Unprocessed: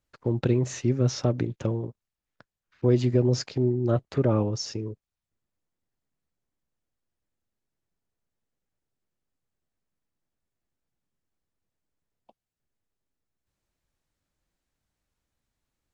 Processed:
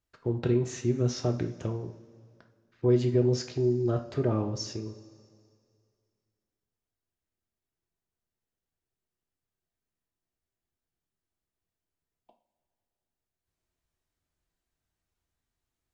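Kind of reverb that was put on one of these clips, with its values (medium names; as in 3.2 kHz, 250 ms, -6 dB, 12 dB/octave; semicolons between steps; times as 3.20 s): two-slope reverb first 0.37 s, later 2.3 s, from -18 dB, DRR 4 dB; trim -5 dB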